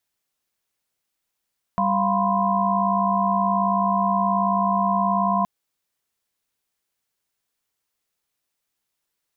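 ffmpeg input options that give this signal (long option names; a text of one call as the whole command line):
ffmpeg -f lavfi -i "aevalsrc='0.0668*(sin(2*PI*196*t)+sin(2*PI*698.46*t)+sin(2*PI*987.77*t)+sin(2*PI*1046.5*t))':duration=3.67:sample_rate=44100" out.wav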